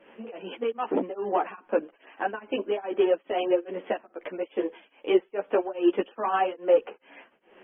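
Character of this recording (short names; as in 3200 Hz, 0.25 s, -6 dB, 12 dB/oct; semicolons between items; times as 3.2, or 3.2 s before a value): tremolo triangle 2.4 Hz, depth 100%; a shimmering, thickened sound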